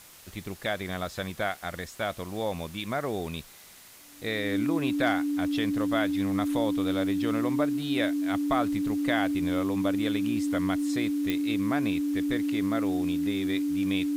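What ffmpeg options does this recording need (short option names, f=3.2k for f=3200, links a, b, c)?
-af "adeclick=t=4,bandreject=f=290:w=30,afwtdn=0.0032"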